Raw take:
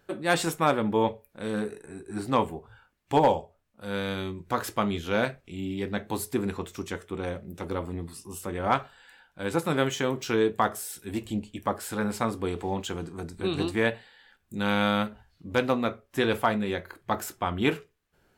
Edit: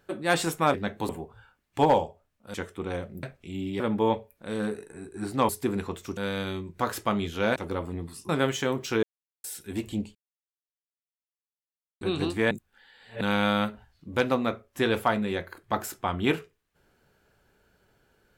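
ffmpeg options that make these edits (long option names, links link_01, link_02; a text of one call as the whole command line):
ffmpeg -i in.wav -filter_complex "[0:a]asplit=16[link_01][link_02][link_03][link_04][link_05][link_06][link_07][link_08][link_09][link_10][link_11][link_12][link_13][link_14][link_15][link_16];[link_01]atrim=end=0.742[link_17];[link_02]atrim=start=5.838:end=6.192[link_18];[link_03]atrim=start=2.428:end=3.882[link_19];[link_04]atrim=start=6.868:end=7.562[link_20];[link_05]atrim=start=5.268:end=5.842[link_21];[link_06]atrim=start=0.738:end=2.432[link_22];[link_07]atrim=start=6.188:end=6.872[link_23];[link_08]atrim=start=3.878:end=5.272[link_24];[link_09]atrim=start=7.558:end=8.292[link_25];[link_10]atrim=start=9.668:end=10.41,asetpts=PTS-STARTPTS,afade=type=out:start_time=0.738:duration=0.004:curve=hsin[link_26];[link_11]atrim=start=10.41:end=10.82,asetpts=PTS-STARTPTS,volume=0[link_27];[link_12]atrim=start=10.82:end=11.53,asetpts=PTS-STARTPTS,afade=type=in:duration=0.004:curve=hsin,afade=type=out:start_time=0.706:duration=0.004:curve=hsin[link_28];[link_13]atrim=start=11.53:end=13.39,asetpts=PTS-STARTPTS,volume=0[link_29];[link_14]atrim=start=13.39:end=13.892,asetpts=PTS-STARTPTS,afade=type=in:duration=0.004:curve=hsin[link_30];[link_15]atrim=start=13.888:end=14.592,asetpts=PTS-STARTPTS,areverse[link_31];[link_16]atrim=start=14.588[link_32];[link_17][link_18]acrossfade=duration=0.004:curve1=hsin:curve2=hsin[link_33];[link_33][link_19]acrossfade=duration=0.004:curve1=hsin:curve2=hsin[link_34];[link_34][link_20]acrossfade=duration=0.004:curve1=hsin:curve2=hsin[link_35];[link_35][link_21]acrossfade=duration=0.004:curve1=hsin:curve2=hsin[link_36];[link_36][link_22]acrossfade=duration=0.004:curve1=hsin:curve2=hsin[link_37];[link_37][link_23]acrossfade=duration=0.004:curve1=hsin:curve2=hsin[link_38];[link_38][link_24]acrossfade=duration=0.004:curve1=hsin:curve2=hsin[link_39];[link_39][link_25]acrossfade=duration=0.004:curve1=hsin:curve2=hsin[link_40];[link_26][link_27][link_28][link_29][link_30]concat=n=5:v=0:a=1[link_41];[link_40][link_41]acrossfade=duration=0.004:curve1=hsin:curve2=hsin[link_42];[link_42][link_31]acrossfade=duration=0.004:curve1=hsin:curve2=hsin[link_43];[link_43][link_32]acrossfade=duration=0.004:curve1=hsin:curve2=hsin" out.wav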